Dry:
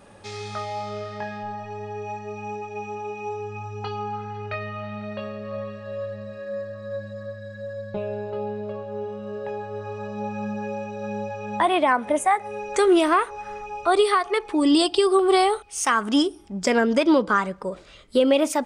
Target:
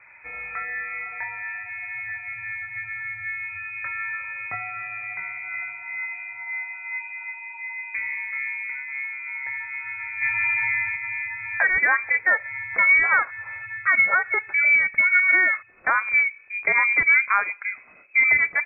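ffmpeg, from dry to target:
ffmpeg -i in.wav -filter_complex "[0:a]asplit=3[link_01][link_02][link_03];[link_01]afade=type=out:start_time=10.21:duration=0.02[link_04];[link_02]acontrast=61,afade=type=in:start_time=10.21:duration=0.02,afade=type=out:start_time=10.95:duration=0.02[link_05];[link_03]afade=type=in:start_time=10.95:duration=0.02[link_06];[link_04][link_05][link_06]amix=inputs=3:normalize=0,lowpass=frequency=2200:width_type=q:width=0.5098,lowpass=frequency=2200:width_type=q:width=0.6013,lowpass=frequency=2200:width_type=q:width=0.9,lowpass=frequency=2200:width_type=q:width=2.563,afreqshift=-2600" out.wav

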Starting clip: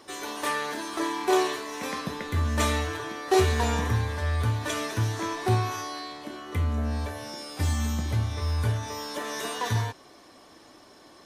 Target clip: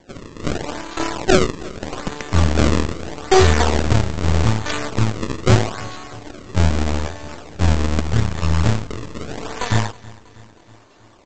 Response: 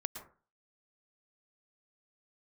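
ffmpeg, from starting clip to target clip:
-af "equalizer=frequency=83:width_type=o:width=0.77:gain=2.5,aeval=exprs='0.335*(cos(1*acos(clip(val(0)/0.335,-1,1)))-cos(1*PI/2))+0.015*(cos(5*acos(clip(val(0)/0.335,-1,1)))-cos(5*PI/2))+0.0376*(cos(7*acos(clip(val(0)/0.335,-1,1)))-cos(7*PI/2))+0.0422*(cos(8*acos(clip(val(0)/0.335,-1,1)))-cos(8*PI/2))':channel_layout=same,aresample=16000,acrusher=samples=12:mix=1:aa=0.000001:lfo=1:lforange=19.2:lforate=0.8,aresample=44100,aecho=1:1:321|642|963|1284|1605:0.0841|0.0505|0.0303|0.0182|0.0109,volume=8dB"

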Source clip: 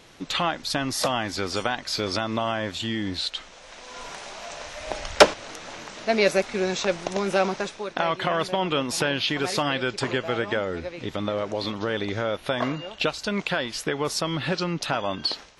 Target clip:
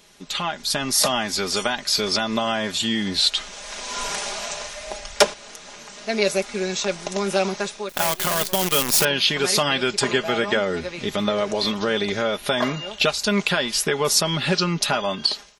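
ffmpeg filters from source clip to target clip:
ffmpeg -i in.wav -filter_complex "[0:a]aecho=1:1:4.9:0.59,asettb=1/sr,asplit=3[link_01][link_02][link_03];[link_01]atrim=end=7.894[link_04];[link_02]atrim=start=7.89:end=9.05,asetpts=PTS-STARTPTS,afade=type=in:duration=0.004:curve=qsin,afade=type=out:start_time=1.156:duration=0.004:curve=qsin,acrusher=bits=5:dc=4:mix=0:aa=0.000001[link_05];[link_03]atrim=start=9.046[link_06];[link_04][link_05]acrossfade=duration=0.004:curve1=hsin:curve2=qsin[link_07];[link_07][link_06]acrossfade=duration=0.004:curve1=qsin:curve2=hsin,dynaudnorm=framelen=280:gausssize=5:maxgain=14dB,crystalizer=i=2:c=0,volume=-6dB" out.wav

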